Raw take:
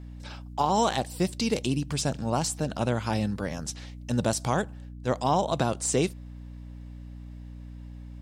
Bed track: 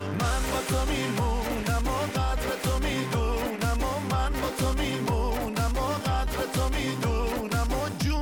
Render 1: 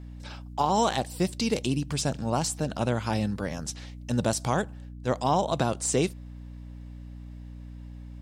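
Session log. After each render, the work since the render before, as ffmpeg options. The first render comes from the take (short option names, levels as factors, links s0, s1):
-af anull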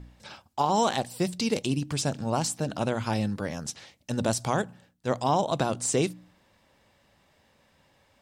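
-af "bandreject=f=60:t=h:w=4,bandreject=f=120:t=h:w=4,bandreject=f=180:t=h:w=4,bandreject=f=240:t=h:w=4,bandreject=f=300:t=h:w=4"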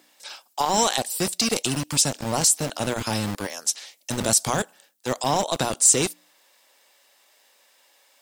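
-filter_complex "[0:a]acrossover=split=350[s0][s1];[s0]acrusher=bits=4:mix=0:aa=0.000001[s2];[s1]crystalizer=i=4:c=0[s3];[s2][s3]amix=inputs=2:normalize=0"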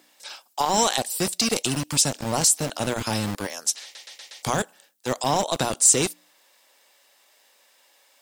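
-filter_complex "[0:a]asplit=6[s0][s1][s2][s3][s4][s5];[s0]atrim=end=3.952[s6];[s1]atrim=start=3.828:end=3.952[s7];[s2]atrim=start=3.828:end=3.952[s8];[s3]atrim=start=3.828:end=3.952[s9];[s4]atrim=start=3.828:end=3.952[s10];[s5]atrim=start=4.428[s11];[s6][s7]acrossfade=d=0.004:c1=hsin:c2=hsin[s12];[s12][s8]acrossfade=d=0.004:c1=hsin:c2=hsin[s13];[s13][s9]acrossfade=d=0.004:c1=hsin:c2=hsin[s14];[s14][s10]acrossfade=d=0.004:c1=hsin:c2=hsin[s15];[s15][s11]acrossfade=d=0.004:c1=hsin:c2=hsin"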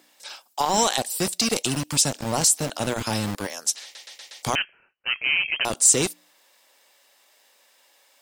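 -filter_complex "[0:a]asettb=1/sr,asplit=3[s0][s1][s2];[s0]atrim=end=4.554[s3];[s1]atrim=start=4.55:end=5.65,asetpts=PTS-STARTPTS,afade=t=in:d=0.004:c=qsin,afade=t=out:st=1.096:d=0.004:c=qsin,lowpass=f=2700:t=q:w=0.5098,lowpass=f=2700:t=q:w=0.6013,lowpass=f=2700:t=q:w=0.9,lowpass=f=2700:t=q:w=2.563,afreqshift=-3200[s4];[s2]atrim=start=5.646[s5];[s3][s4]acrossfade=d=0.004:c1=hsin:c2=qsin[s6];[s6][s5]acrossfade=d=0.004:c1=qsin:c2=hsin"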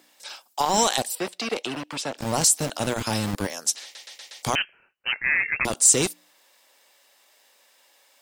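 -filter_complex "[0:a]asettb=1/sr,asplit=3[s0][s1][s2];[s0]atrim=end=1.154[s3];[s1]atrim=start=1.15:end=2.18,asetpts=PTS-STARTPTS,afade=t=in:d=0.004:c=qsin,afade=t=out:st=1.026:d=0.004:c=qsin,acrossover=split=280 3600:gain=0.158 1 0.112[s4][s5][s6];[s4][s5][s6]amix=inputs=3:normalize=0[s7];[s2]atrim=start=2.176[s8];[s3][s7]acrossfade=d=0.004:c1=hsin:c2=qsin[s9];[s9][s8]acrossfade=d=0.004:c1=qsin:c2=hsin,asettb=1/sr,asplit=3[s10][s11][s12];[s10]atrim=end=3.334[s13];[s11]atrim=start=3.33:end=3.88,asetpts=PTS-STARTPTS,afade=t=in:d=0.004:c=qsin,afade=t=out:st=0.546:d=0.004:c=qsin,lowshelf=f=290:g=7[s14];[s12]atrim=start=3.876[s15];[s13][s14]acrossfade=d=0.004:c1=hsin:c2=qsin[s16];[s16][s15]acrossfade=d=0.004:c1=qsin:c2=hsin,asplit=3[s17][s18][s19];[s17]afade=t=out:st=5.11:d=0.02[s20];[s18]afreqshift=-480,afade=t=in:st=5.11:d=0.02,afade=t=out:st=5.66:d=0.02[s21];[s19]afade=t=in:st=5.66:d=0.02[s22];[s20][s21][s22]amix=inputs=3:normalize=0"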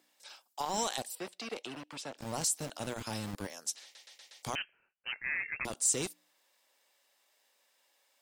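-af "volume=0.237"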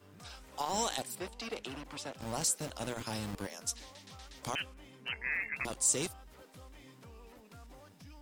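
-filter_complex "[1:a]volume=0.0447[s0];[0:a][s0]amix=inputs=2:normalize=0"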